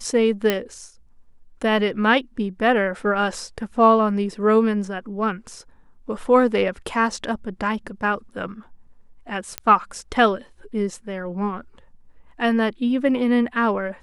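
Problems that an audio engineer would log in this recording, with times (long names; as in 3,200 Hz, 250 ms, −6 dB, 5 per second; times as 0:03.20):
0:00.50: click −6 dBFS
0:09.58: click −8 dBFS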